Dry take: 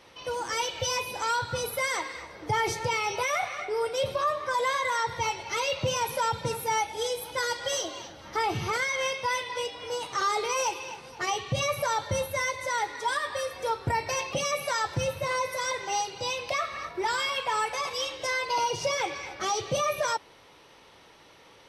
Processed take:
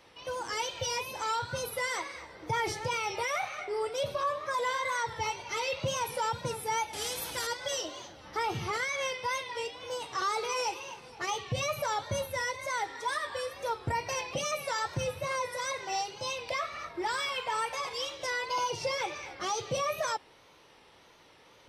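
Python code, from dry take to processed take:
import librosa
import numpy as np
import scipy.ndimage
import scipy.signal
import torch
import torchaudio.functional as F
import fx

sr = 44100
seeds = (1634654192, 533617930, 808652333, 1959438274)

y = fx.wow_flutter(x, sr, seeds[0], rate_hz=2.1, depth_cents=84.0)
y = fx.spectral_comp(y, sr, ratio=2.0, at=(6.93, 7.47))
y = F.gain(torch.from_numpy(y), -4.0).numpy()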